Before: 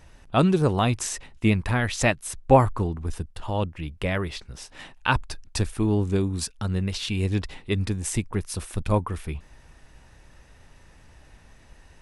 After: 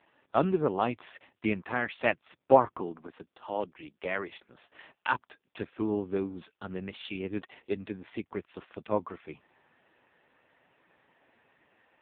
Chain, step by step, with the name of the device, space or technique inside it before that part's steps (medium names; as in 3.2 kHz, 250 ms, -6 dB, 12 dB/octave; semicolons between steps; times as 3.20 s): 2.80–4.28 s: Bessel high-pass 190 Hz, order 4; telephone (band-pass 280–3500 Hz; trim -2.5 dB; AMR-NB 5.15 kbps 8 kHz)